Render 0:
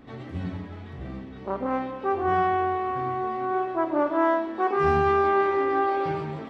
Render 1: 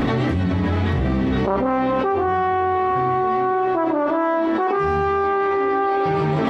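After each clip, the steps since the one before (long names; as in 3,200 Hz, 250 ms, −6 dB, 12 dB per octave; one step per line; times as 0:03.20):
envelope flattener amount 100%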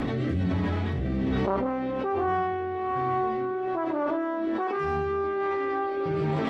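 rotating-speaker cabinet horn 1.2 Hz
level −5.5 dB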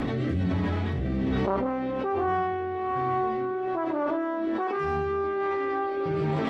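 no processing that can be heard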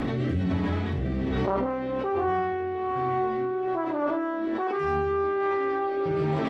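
double-tracking delay 48 ms −11 dB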